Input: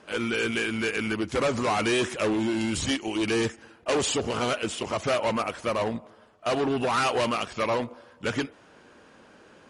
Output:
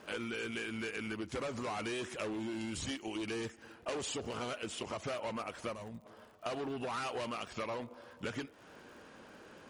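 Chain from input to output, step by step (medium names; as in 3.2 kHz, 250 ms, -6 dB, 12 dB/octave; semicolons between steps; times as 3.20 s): compression 4:1, threshold -37 dBFS, peak gain reduction 13.5 dB; time-frequency box 5.74–6.06 s, 230–5600 Hz -8 dB; crackle 63 per s -51 dBFS; trim -1.5 dB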